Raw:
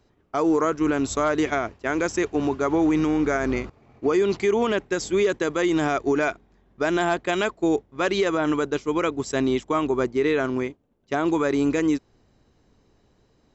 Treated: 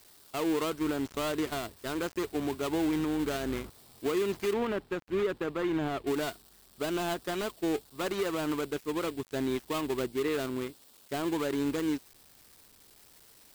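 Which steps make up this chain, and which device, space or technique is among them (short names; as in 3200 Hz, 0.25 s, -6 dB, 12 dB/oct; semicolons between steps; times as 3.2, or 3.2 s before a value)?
budget class-D amplifier (switching dead time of 0.23 ms; switching spikes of -29 dBFS); 4.53–6.07 tone controls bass +2 dB, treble -14 dB; gain -8.5 dB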